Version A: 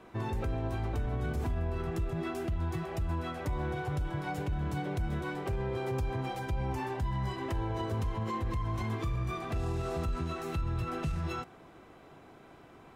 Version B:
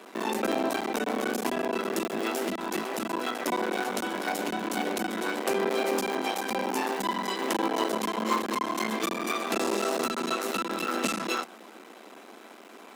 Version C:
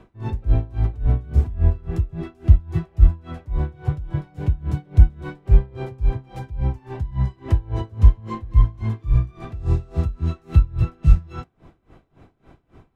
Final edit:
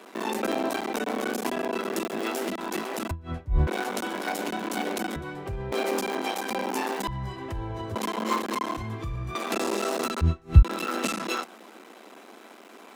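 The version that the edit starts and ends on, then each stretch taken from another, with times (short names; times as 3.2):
B
3.11–3.67 from C
5.16–5.72 from A
7.08–7.95 from A
8.77–9.35 from A
10.21–10.63 from C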